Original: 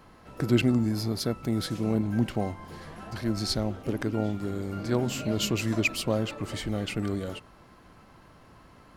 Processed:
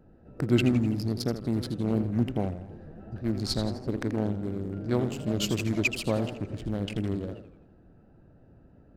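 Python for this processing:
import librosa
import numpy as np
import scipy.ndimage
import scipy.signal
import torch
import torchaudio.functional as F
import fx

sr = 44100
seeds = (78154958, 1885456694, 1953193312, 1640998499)

y = fx.wiener(x, sr, points=41)
y = fx.echo_warbled(y, sr, ms=83, feedback_pct=51, rate_hz=2.8, cents=190, wet_db=-10.5)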